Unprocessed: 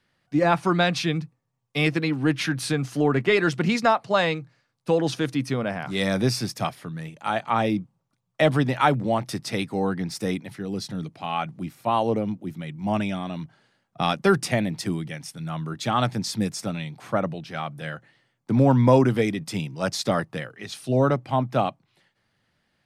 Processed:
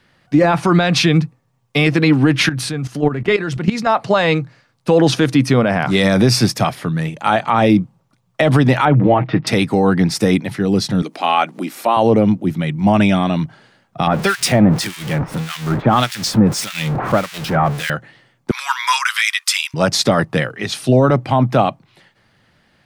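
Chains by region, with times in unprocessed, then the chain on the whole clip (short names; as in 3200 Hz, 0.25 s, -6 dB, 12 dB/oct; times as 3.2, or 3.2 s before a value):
2.49–3.87 bell 75 Hz +4.5 dB 2.4 oct + level quantiser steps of 18 dB
8.85–9.47 inverse Chebyshev low-pass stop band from 8400 Hz, stop band 60 dB + comb 6.4 ms, depth 55%
11.02–11.97 HPF 260 Hz 24 dB/oct + upward compressor, threshold -40 dBFS + high shelf 5700 Hz +5 dB
14.07–17.9 zero-crossing step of -28 dBFS + harmonic tremolo 1.7 Hz, depth 100%, crossover 1600 Hz
18.51–19.74 steep high-pass 1100 Hz 48 dB/oct + high shelf 2100 Hz +10.5 dB
whole clip: high shelf 4900 Hz -4.5 dB; maximiser +17.5 dB; gain -3 dB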